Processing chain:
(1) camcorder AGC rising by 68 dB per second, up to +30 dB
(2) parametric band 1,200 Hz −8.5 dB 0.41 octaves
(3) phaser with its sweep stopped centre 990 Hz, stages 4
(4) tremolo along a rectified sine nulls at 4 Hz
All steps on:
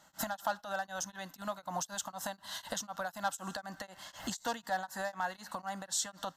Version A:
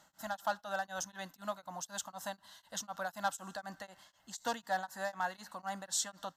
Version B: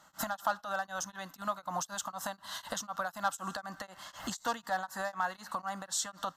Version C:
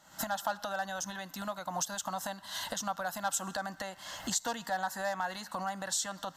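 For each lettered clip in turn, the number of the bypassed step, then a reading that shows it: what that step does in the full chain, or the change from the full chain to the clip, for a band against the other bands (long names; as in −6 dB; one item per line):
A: 1, change in momentary loudness spread +3 LU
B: 2, 1 kHz band +2.5 dB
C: 4, change in momentary loudness spread −1 LU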